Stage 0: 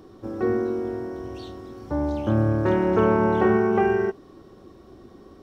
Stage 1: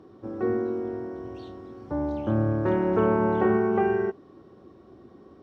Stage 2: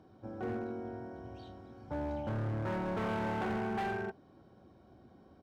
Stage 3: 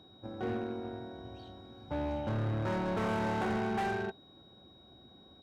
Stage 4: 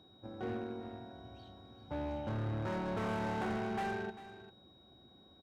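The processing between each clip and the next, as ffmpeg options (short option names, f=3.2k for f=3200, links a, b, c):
-af "highpass=83,aemphasis=mode=reproduction:type=75kf,volume=-2.5dB"
-af "aecho=1:1:1.3:0.54,asoftclip=type=hard:threshold=-25dB,volume=-7dB"
-filter_complex "[0:a]asplit=2[a][b];[b]acrusher=bits=5:mix=0:aa=0.5,volume=-12dB[c];[a][c]amix=inputs=2:normalize=0,aeval=exprs='val(0)+0.00112*sin(2*PI*3800*n/s)':c=same"
-af "aecho=1:1:396:0.178,volume=-4dB"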